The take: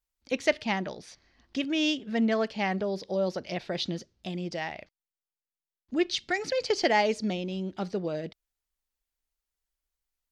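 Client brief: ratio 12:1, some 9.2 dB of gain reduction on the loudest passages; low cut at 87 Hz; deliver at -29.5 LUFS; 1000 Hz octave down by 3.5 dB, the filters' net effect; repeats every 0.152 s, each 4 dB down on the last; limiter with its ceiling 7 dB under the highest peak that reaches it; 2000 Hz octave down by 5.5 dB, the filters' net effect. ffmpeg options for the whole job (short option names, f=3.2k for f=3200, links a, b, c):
-af "highpass=87,equalizer=f=1k:t=o:g=-4,equalizer=f=2k:t=o:g=-5.5,acompressor=threshold=-30dB:ratio=12,alimiter=level_in=3dB:limit=-24dB:level=0:latency=1,volume=-3dB,aecho=1:1:152|304|456|608|760|912|1064|1216|1368:0.631|0.398|0.25|0.158|0.0994|0.0626|0.0394|0.0249|0.0157,volume=6dB"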